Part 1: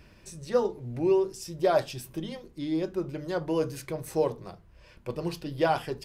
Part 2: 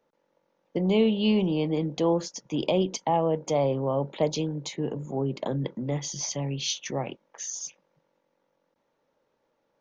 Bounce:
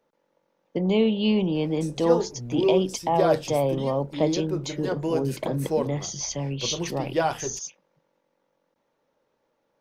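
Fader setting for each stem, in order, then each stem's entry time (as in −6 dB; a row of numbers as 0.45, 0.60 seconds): +1.0, +1.0 decibels; 1.55, 0.00 seconds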